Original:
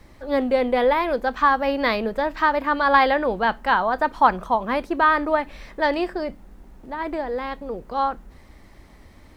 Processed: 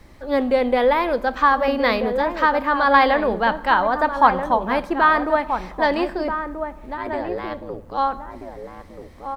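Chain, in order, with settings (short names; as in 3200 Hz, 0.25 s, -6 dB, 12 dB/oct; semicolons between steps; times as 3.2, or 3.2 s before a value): 6.97–7.98 ring modulator 55 Hz; outdoor echo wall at 220 m, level -7 dB; on a send at -18.5 dB: reverb RT60 1.1 s, pre-delay 47 ms; on the sum: gain +1.5 dB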